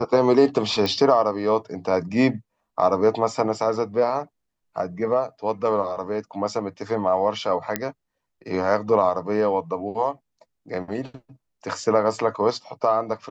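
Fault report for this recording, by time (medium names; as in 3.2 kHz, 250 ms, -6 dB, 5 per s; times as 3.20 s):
0.86 s: pop -12 dBFS
7.76 s: pop -7 dBFS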